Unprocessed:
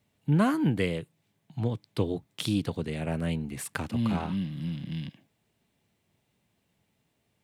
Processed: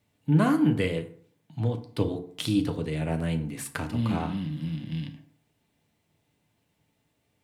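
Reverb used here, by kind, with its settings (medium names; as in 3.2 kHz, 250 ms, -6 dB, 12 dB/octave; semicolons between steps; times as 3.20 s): FDN reverb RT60 0.56 s, low-frequency decay 1×, high-frequency decay 0.6×, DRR 5.5 dB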